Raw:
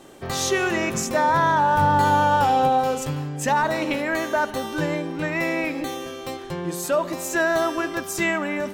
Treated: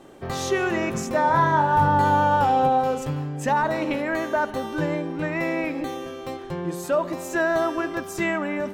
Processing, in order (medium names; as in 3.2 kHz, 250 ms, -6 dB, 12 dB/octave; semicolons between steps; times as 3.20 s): treble shelf 2.6 kHz -9 dB; 1.22–1.88 s: flutter echo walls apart 4.8 m, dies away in 0.25 s